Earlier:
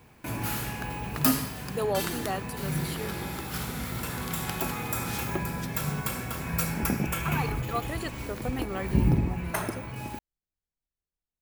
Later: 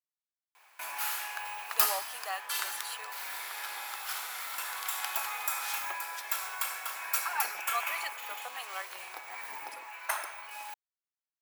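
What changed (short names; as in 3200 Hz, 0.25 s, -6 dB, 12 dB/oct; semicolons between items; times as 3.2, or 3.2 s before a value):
background: entry +0.55 s; master: add HPF 800 Hz 24 dB/oct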